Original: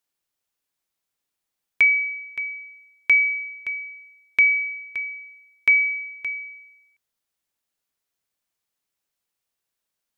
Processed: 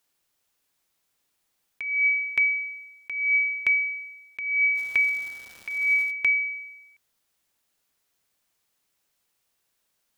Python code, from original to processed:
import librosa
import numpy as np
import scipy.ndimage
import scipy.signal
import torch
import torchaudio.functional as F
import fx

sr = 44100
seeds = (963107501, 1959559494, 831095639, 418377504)

y = fx.over_compress(x, sr, threshold_db=-27.0, ratio=-1.0)
y = fx.dmg_crackle(y, sr, seeds[0], per_s=570.0, level_db=-39.0, at=(4.75, 6.1), fade=0.02)
y = y * librosa.db_to_amplitude(3.0)